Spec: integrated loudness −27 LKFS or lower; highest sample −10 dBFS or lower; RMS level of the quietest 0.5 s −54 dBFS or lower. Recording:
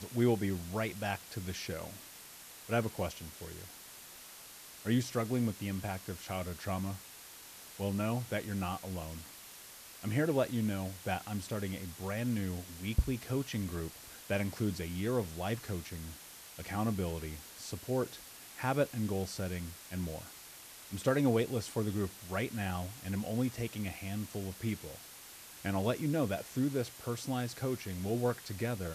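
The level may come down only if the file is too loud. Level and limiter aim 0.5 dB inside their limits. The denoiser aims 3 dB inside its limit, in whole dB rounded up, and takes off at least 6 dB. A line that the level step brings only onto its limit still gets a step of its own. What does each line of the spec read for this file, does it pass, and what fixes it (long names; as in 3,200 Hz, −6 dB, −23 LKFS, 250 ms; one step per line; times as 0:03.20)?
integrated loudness −36.0 LKFS: in spec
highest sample −18.0 dBFS: in spec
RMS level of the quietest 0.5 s −52 dBFS: out of spec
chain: broadband denoise 6 dB, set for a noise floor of −52 dBFS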